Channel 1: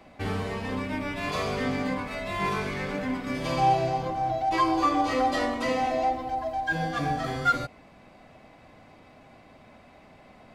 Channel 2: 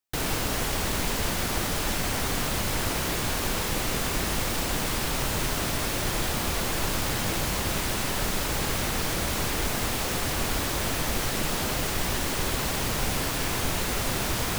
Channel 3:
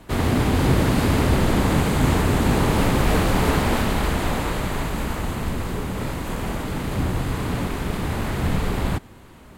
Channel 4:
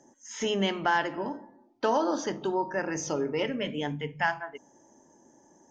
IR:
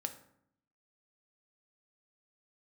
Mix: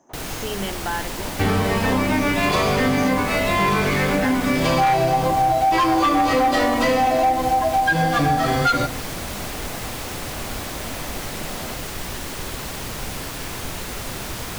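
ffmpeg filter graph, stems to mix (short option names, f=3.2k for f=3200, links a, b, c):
-filter_complex "[0:a]aeval=exprs='0.282*sin(PI/2*2.24*val(0)/0.282)':c=same,adelay=1200,volume=0dB,asplit=2[a][b];[b]volume=-5dB[c];[1:a]volume=-2.5dB[d];[2:a]acompressor=threshold=-25dB:ratio=6,bandpass=f=770:t=q:w=3.2:csg=0,volume=-5dB[e];[3:a]volume=-2dB[f];[4:a]atrim=start_sample=2205[g];[c][g]afir=irnorm=-1:irlink=0[h];[a][d][e][f][h]amix=inputs=5:normalize=0,acompressor=threshold=-16dB:ratio=4"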